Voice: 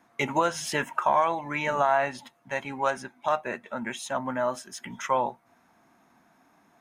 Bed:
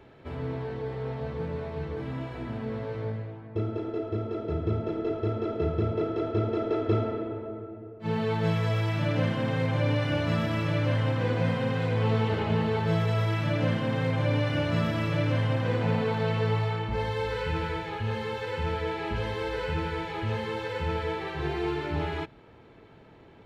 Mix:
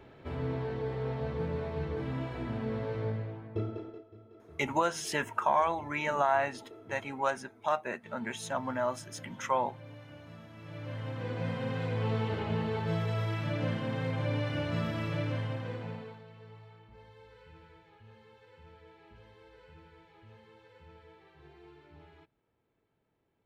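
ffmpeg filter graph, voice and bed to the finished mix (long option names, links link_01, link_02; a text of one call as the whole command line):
ffmpeg -i stem1.wav -i stem2.wav -filter_complex "[0:a]adelay=4400,volume=-4dB[link_01];[1:a]volume=16dB,afade=type=out:start_time=3.39:duration=0.65:silence=0.0794328,afade=type=in:start_time=10.55:duration=1.2:silence=0.141254,afade=type=out:start_time=15.14:duration=1.1:silence=0.105925[link_02];[link_01][link_02]amix=inputs=2:normalize=0" out.wav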